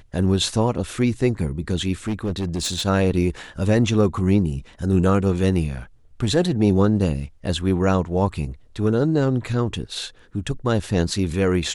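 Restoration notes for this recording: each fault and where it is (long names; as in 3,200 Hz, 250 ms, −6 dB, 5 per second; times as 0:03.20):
0:02.07–0:02.86: clipping −20 dBFS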